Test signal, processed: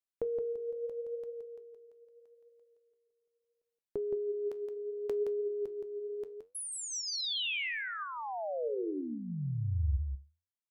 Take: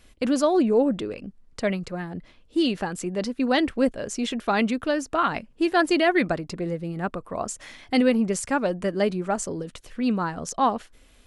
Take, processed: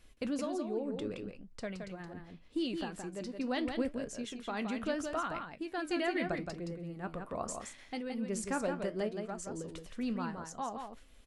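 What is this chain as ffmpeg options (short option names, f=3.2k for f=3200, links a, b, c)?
-af "lowshelf=f=70:g=4.5,acompressor=threshold=-21dB:ratio=6,tremolo=f=0.81:d=0.52,flanger=delay=5.5:depth=9.6:regen=74:speed=0.75:shape=triangular,aecho=1:1:170:0.501,volume=-4dB"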